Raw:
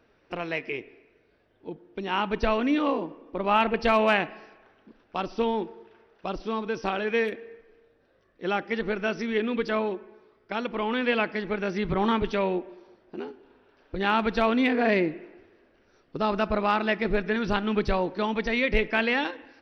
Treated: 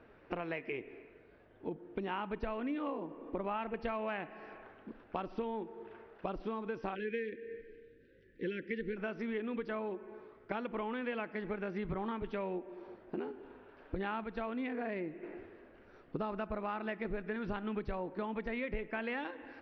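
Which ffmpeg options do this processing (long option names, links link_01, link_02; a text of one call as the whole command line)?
ffmpeg -i in.wav -filter_complex "[0:a]asplit=3[link_01][link_02][link_03];[link_01]afade=type=out:start_time=6.94:duration=0.02[link_04];[link_02]asuperstop=centerf=900:order=12:qfactor=0.83,afade=type=in:start_time=6.94:duration=0.02,afade=type=out:start_time=8.96:duration=0.02[link_05];[link_03]afade=type=in:start_time=8.96:duration=0.02[link_06];[link_04][link_05][link_06]amix=inputs=3:normalize=0,asettb=1/sr,asplit=3[link_07][link_08][link_09];[link_07]atrim=end=17.954[link_10];[link_08]atrim=start=17.95:end=19.04,asetpts=PTS-STARTPTS,afade=type=in:duration=0.004:curve=qsin,afade=type=out:start_time=1.086:duration=0.004:curve=qsin,highshelf=frequency=4000:gain=-6[link_11];[link_09]atrim=start=19.036[link_12];[link_10][link_11]acrossfade=duration=0.004:curve1=hsin:curve2=qsin[link_13];[link_13][link_12]acrossfade=duration=0.004:curve1=qsin:curve2=hsin,asplit=3[link_14][link_15][link_16];[link_14]atrim=end=14.242[link_17];[link_15]atrim=start=14.238:end=15.232,asetpts=PTS-STARTPTS,volume=-5dB[link_18];[link_16]atrim=start=15.228[link_19];[link_17][link_18]acrossfade=duration=0.004:curve1=hsin:curve2=hsin[link_20];[link_20][link_19]acrossfade=duration=0.004:curve1=hsin:curve2=hsin,lowpass=2300,acompressor=threshold=-40dB:ratio=6,volume=4dB" out.wav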